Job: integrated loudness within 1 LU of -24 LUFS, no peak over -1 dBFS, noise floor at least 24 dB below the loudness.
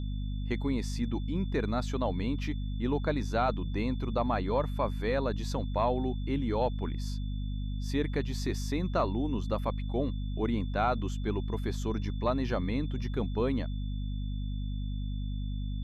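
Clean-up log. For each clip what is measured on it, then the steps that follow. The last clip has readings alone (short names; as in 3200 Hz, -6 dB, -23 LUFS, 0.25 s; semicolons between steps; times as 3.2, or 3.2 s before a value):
hum 50 Hz; harmonics up to 250 Hz; hum level -31 dBFS; steady tone 3500 Hz; tone level -54 dBFS; loudness -32.5 LUFS; peak -16.5 dBFS; loudness target -24.0 LUFS
-> notches 50/100/150/200/250 Hz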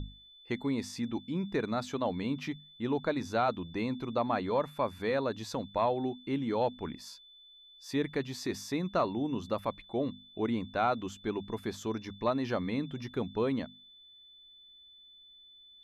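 hum none; steady tone 3500 Hz; tone level -54 dBFS
-> notch 3500 Hz, Q 30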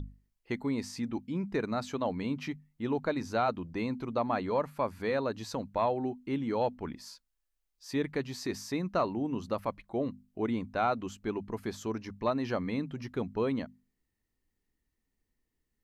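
steady tone none; loudness -33.5 LUFS; peak -18.0 dBFS; loudness target -24.0 LUFS
-> gain +9.5 dB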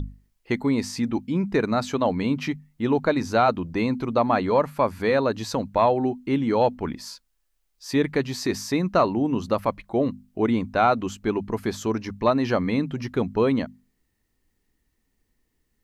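loudness -24.0 LUFS; peak -8.5 dBFS; noise floor -73 dBFS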